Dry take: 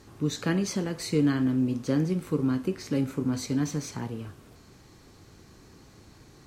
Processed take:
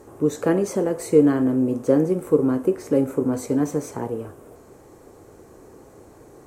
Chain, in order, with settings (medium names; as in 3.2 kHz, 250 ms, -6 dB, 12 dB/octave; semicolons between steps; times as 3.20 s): FFT filter 190 Hz 0 dB, 490 Hz +15 dB, 4.4 kHz -10 dB, 8.2 kHz +6 dB